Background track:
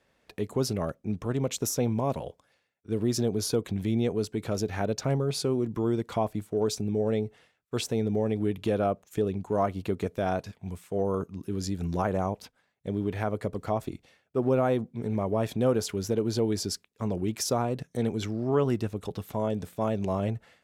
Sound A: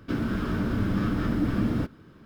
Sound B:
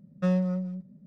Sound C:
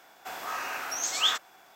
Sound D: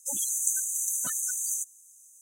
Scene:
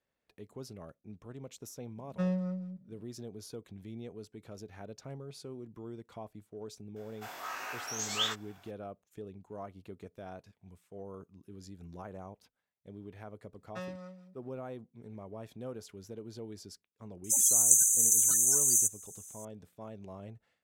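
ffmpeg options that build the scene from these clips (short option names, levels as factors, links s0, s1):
-filter_complex "[2:a]asplit=2[s0][s1];[0:a]volume=0.133[s2];[3:a]flanger=delay=18.5:depth=3.3:speed=1.4[s3];[s1]highpass=f=1400:p=1[s4];[4:a]highshelf=f=3800:t=q:w=3:g=7.5[s5];[s0]atrim=end=1.06,asetpts=PTS-STARTPTS,volume=0.473,afade=t=in:d=0.004:c=hsin,afade=t=out:st=1.056:d=0.004:c=hsin,adelay=1960[s6];[s3]atrim=end=1.75,asetpts=PTS-STARTPTS,volume=0.708,afade=t=in:d=0.004:c=hsin,afade=t=out:st=1.746:d=0.004:c=hsin,adelay=6960[s7];[s4]atrim=end=1.06,asetpts=PTS-STARTPTS,volume=0.708,afade=t=in:d=0.004:c=hsin,afade=t=out:st=1.056:d=0.004:c=hsin,adelay=13530[s8];[s5]atrim=end=2.21,asetpts=PTS-STARTPTS,volume=0.596,afade=t=in:d=0.004:c=hsin,afade=t=out:st=2.206:d=0.004:c=hsin,adelay=17240[s9];[s2][s6][s7][s8][s9]amix=inputs=5:normalize=0"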